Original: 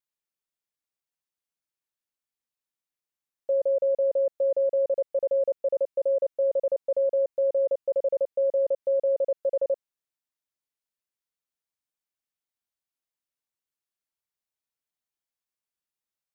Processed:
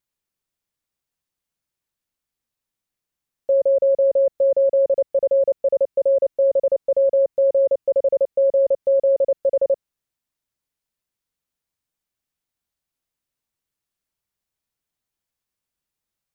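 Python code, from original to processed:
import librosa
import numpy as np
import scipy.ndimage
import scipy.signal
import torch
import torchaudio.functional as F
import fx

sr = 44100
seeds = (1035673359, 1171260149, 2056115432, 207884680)

y = fx.low_shelf(x, sr, hz=220.0, db=10.0)
y = F.gain(torch.from_numpy(y), 5.5).numpy()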